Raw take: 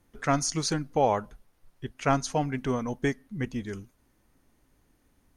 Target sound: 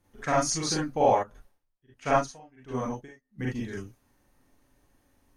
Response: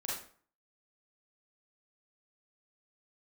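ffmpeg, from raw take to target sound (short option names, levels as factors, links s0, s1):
-filter_complex "[1:a]atrim=start_sample=2205,atrim=end_sample=3528[s0];[0:a][s0]afir=irnorm=-1:irlink=0,asplit=3[s1][s2][s3];[s1]afade=t=out:st=1.22:d=0.02[s4];[s2]aeval=exprs='val(0)*pow(10,-28*(0.5-0.5*cos(2*PI*1.4*n/s))/20)':c=same,afade=t=in:st=1.22:d=0.02,afade=t=out:st=3.38:d=0.02[s5];[s3]afade=t=in:st=3.38:d=0.02[s6];[s4][s5][s6]amix=inputs=3:normalize=0"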